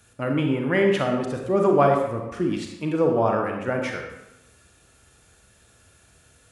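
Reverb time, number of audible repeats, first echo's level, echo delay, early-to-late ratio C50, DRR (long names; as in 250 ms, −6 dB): 1.0 s, no echo audible, no echo audible, no echo audible, 3.5 dB, 2.0 dB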